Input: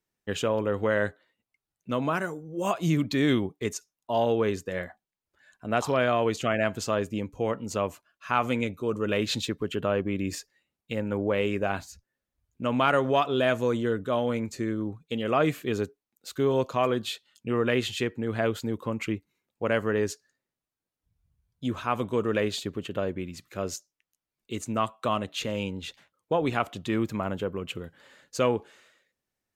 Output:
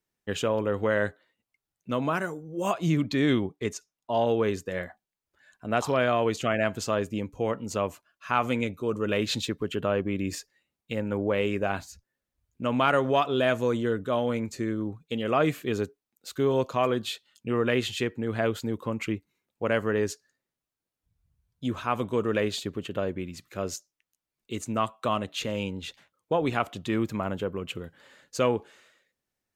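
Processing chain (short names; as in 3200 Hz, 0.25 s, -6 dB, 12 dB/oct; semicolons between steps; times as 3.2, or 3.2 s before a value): 2.75–4.27 high shelf 9500 Hz -10.5 dB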